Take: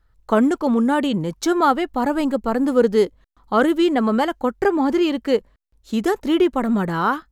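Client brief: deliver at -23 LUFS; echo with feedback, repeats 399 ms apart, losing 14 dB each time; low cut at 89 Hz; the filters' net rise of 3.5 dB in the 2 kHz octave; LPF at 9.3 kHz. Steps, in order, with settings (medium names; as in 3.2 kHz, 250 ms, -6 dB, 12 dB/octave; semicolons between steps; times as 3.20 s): high-pass 89 Hz; low-pass 9.3 kHz; peaking EQ 2 kHz +5 dB; feedback delay 399 ms, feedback 20%, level -14 dB; trim -4 dB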